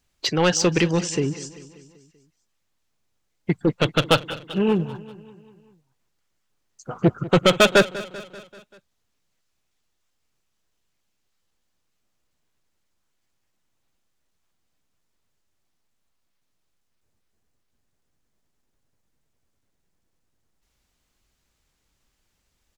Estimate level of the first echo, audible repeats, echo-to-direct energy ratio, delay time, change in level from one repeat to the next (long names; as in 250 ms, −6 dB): −17.0 dB, 4, −15.5 dB, 194 ms, −5.0 dB